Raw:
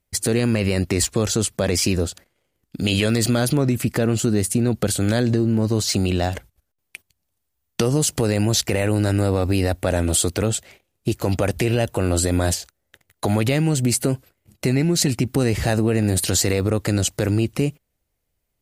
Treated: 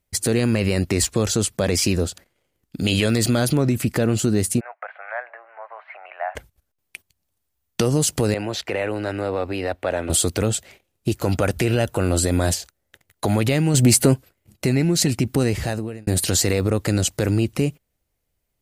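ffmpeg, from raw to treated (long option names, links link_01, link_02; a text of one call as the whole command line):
ffmpeg -i in.wav -filter_complex "[0:a]asplit=3[link_01][link_02][link_03];[link_01]afade=type=out:start_time=4.59:duration=0.02[link_04];[link_02]asuperpass=centerf=1200:order=12:qfactor=0.74,afade=type=in:start_time=4.59:duration=0.02,afade=type=out:start_time=6.35:duration=0.02[link_05];[link_03]afade=type=in:start_time=6.35:duration=0.02[link_06];[link_04][link_05][link_06]amix=inputs=3:normalize=0,asettb=1/sr,asplit=3[link_07][link_08][link_09];[link_07]atrim=end=8.344[link_10];[link_08]atrim=start=8.34:end=10.1,asetpts=PTS-STARTPTS,afade=type=in:duration=0.004:curve=qsin,afade=type=out:start_time=1.756:duration=0.004:curve=qsin,acrossover=split=350 3600:gain=0.224 1 0.141[link_11][link_12][link_13];[link_11][link_12][link_13]amix=inputs=3:normalize=0[link_14];[link_09]atrim=start=10.096[link_15];[link_10][link_14]acrossfade=duration=0.004:curve1=hsin:curve2=qsin[link_16];[link_16][link_15]acrossfade=duration=0.004:curve1=qsin:curve2=hsin,asettb=1/sr,asplit=3[link_17][link_18][link_19];[link_17]atrim=end=11.224[link_20];[link_18]atrim=start=11.22:end=12.04,asetpts=PTS-STARTPTS,afade=type=in:duration=0.004:curve=qsin,afade=type=out:start_time=0.816:duration=0.004:curve=qsin,equalizer=frequency=1400:width=5.8:gain=6[link_21];[link_19]atrim=start=12.036[link_22];[link_20][link_21]acrossfade=duration=0.004:curve1=hsin:curve2=qsin[link_23];[link_23][link_22]acrossfade=duration=0.004:curve1=qsin:curve2=hsin,asettb=1/sr,asplit=3[link_24][link_25][link_26];[link_24]atrim=end=13.744[link_27];[link_25]atrim=start=13.74:end=14.14,asetpts=PTS-STARTPTS,afade=type=in:duration=0.004:curve=qsin,afade=type=out:start_time=0.396:duration=0.004:curve=qsin,acontrast=45[link_28];[link_26]atrim=start=14.136[link_29];[link_27][link_28]acrossfade=duration=0.004:curve1=hsin:curve2=qsin[link_30];[link_30][link_29]acrossfade=duration=0.004:curve1=qsin:curve2=hsin,asplit=2[link_31][link_32];[link_31]atrim=end=16.07,asetpts=PTS-STARTPTS,afade=type=out:start_time=15.42:duration=0.65[link_33];[link_32]atrim=start=16.07,asetpts=PTS-STARTPTS,afade=type=in:duration=0.004:curve=hsin[link_34];[link_33][link_34]concat=n=2:v=0:a=1" out.wav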